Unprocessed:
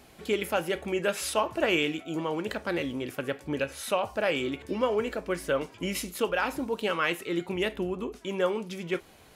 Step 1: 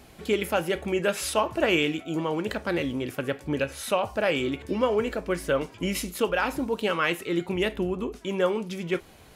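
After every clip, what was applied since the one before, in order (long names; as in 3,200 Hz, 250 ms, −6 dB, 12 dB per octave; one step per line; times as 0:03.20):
low-shelf EQ 170 Hz +5.5 dB
level +2 dB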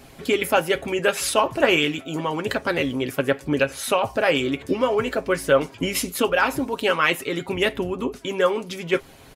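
comb filter 7.4 ms, depth 48%
harmonic and percussive parts rebalanced percussive +7 dB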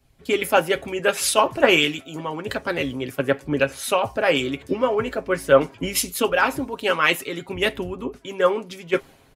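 multiband upward and downward expander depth 70%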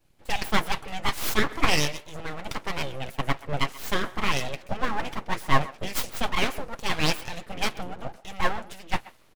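full-wave rectification
far-end echo of a speakerphone 130 ms, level −18 dB
level −3 dB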